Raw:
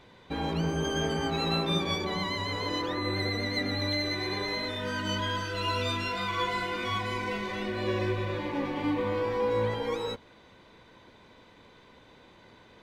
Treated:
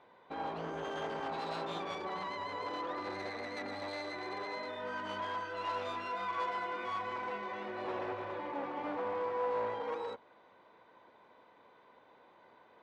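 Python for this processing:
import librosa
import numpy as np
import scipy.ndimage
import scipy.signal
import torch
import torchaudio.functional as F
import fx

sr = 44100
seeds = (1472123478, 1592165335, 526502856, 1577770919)

y = np.minimum(x, 2.0 * 10.0 ** (-28.5 / 20.0) - x)
y = fx.bandpass_q(y, sr, hz=840.0, q=1.1)
y = y * 10.0 ** (-1.5 / 20.0)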